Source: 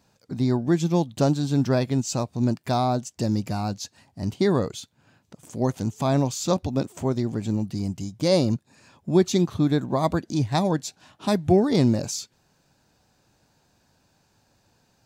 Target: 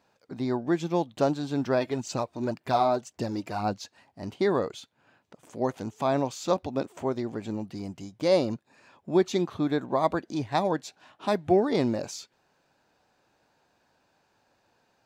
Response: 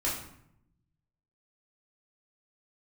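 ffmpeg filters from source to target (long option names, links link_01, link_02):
-filter_complex "[0:a]bass=frequency=250:gain=-13,treble=frequency=4000:gain=-11,asplit=3[link_01][link_02][link_03];[link_01]afade=type=out:start_time=1.79:duration=0.02[link_04];[link_02]aphaser=in_gain=1:out_gain=1:delay=3.3:decay=0.49:speed=1.9:type=sinusoidal,afade=type=in:start_time=1.79:duration=0.02,afade=type=out:start_time=3.83:duration=0.02[link_05];[link_03]afade=type=in:start_time=3.83:duration=0.02[link_06];[link_04][link_05][link_06]amix=inputs=3:normalize=0"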